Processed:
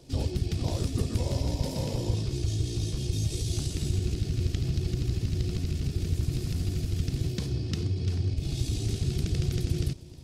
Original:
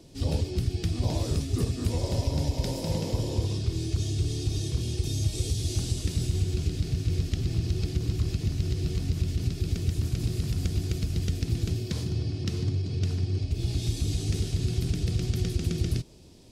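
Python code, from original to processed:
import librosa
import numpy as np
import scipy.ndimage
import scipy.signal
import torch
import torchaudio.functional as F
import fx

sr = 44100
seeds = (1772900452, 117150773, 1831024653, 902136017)

p1 = fx.stretch_grains(x, sr, factor=0.62, grain_ms=35.0)
y = p1 + fx.echo_single(p1, sr, ms=313, db=-20.0, dry=0)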